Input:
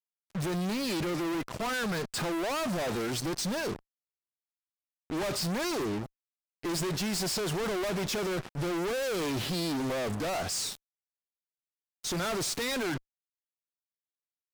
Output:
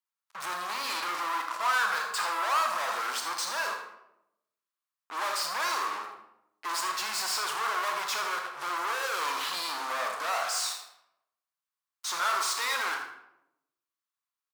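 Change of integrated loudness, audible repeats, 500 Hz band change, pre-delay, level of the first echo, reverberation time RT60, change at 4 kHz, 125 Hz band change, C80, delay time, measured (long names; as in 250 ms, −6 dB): +1.5 dB, 1, −8.0 dB, 24 ms, −11.0 dB, 0.85 s, +2.5 dB, below −30 dB, 6.0 dB, 80 ms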